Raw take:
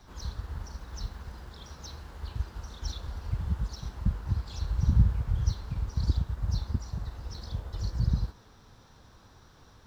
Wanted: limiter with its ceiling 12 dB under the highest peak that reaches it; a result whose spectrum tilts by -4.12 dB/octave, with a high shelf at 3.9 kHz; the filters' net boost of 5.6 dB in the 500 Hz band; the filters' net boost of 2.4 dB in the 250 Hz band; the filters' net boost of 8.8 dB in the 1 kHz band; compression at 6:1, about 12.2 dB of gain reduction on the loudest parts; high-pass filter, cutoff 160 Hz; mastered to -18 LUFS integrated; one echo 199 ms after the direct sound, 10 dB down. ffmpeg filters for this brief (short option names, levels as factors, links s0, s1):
-af "highpass=160,equalizer=f=250:t=o:g=5.5,equalizer=f=500:t=o:g=3,equalizer=f=1000:t=o:g=9,highshelf=f=3900:g=6.5,acompressor=threshold=0.0126:ratio=6,alimiter=level_in=5.31:limit=0.0631:level=0:latency=1,volume=0.188,aecho=1:1:199:0.316,volume=29.9"